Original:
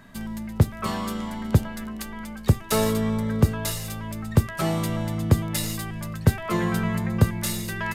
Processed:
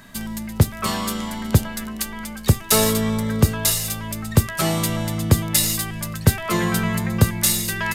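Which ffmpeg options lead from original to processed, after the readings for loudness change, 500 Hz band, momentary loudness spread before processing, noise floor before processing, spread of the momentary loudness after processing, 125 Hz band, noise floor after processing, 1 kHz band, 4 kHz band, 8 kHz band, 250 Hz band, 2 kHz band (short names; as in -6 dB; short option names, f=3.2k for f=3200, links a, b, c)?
+4.5 dB, +3.0 dB, 11 LU, -37 dBFS, 11 LU, +2.5 dB, -34 dBFS, +4.0 dB, +9.5 dB, +11.5 dB, +2.5 dB, +5.5 dB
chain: -af "highshelf=f=2.7k:g=10,volume=2.5dB"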